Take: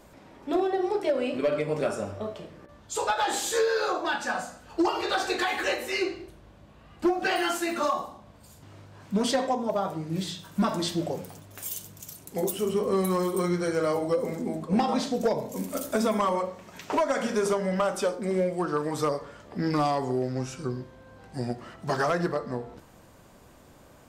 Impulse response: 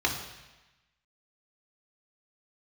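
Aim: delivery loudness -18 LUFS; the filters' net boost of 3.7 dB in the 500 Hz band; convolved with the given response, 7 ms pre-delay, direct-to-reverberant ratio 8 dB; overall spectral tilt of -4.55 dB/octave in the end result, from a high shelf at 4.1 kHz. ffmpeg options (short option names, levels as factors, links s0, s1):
-filter_complex "[0:a]equalizer=f=500:t=o:g=4.5,highshelf=f=4100:g=3.5,asplit=2[s0][s1];[1:a]atrim=start_sample=2205,adelay=7[s2];[s1][s2]afir=irnorm=-1:irlink=0,volume=0.112[s3];[s0][s3]amix=inputs=2:normalize=0,volume=2.24"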